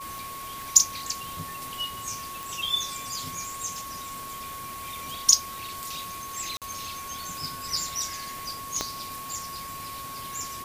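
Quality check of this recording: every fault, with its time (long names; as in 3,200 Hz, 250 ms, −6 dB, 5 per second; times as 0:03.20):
scratch tick 33 1/3 rpm
whistle 1,100 Hz −37 dBFS
0:00.62: click
0:02.43: click
0:06.57–0:06.62: drop-out 47 ms
0:08.81: click −11 dBFS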